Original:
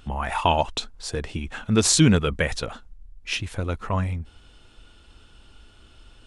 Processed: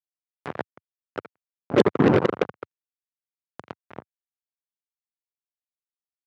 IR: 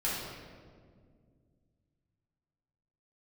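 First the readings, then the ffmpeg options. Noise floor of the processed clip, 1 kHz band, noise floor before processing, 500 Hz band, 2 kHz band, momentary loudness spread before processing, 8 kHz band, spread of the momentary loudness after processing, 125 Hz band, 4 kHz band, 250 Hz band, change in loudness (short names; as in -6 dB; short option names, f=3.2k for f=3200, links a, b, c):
under -85 dBFS, -6.0 dB, -53 dBFS, +3.0 dB, -5.5 dB, 16 LU, under -25 dB, 21 LU, -7.5 dB, -14.0 dB, -2.0 dB, +1.5 dB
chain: -filter_complex "[0:a]lowpass=f=420:t=q:w=5.1,asplit=2[a][b];[b]aecho=0:1:82|164|246|328|410|492:0.473|0.237|0.118|0.0591|0.0296|0.0148[c];[a][c]amix=inputs=2:normalize=0,afftfilt=real='hypot(re,im)*cos(2*PI*random(0))':imag='hypot(re,im)*sin(2*PI*random(1))':win_size=512:overlap=0.75,acrusher=bits=2:mix=0:aa=0.5,acompressor=mode=upward:threshold=-26dB:ratio=2.5,highpass=f=100:w=0.5412,highpass=f=100:w=1.3066"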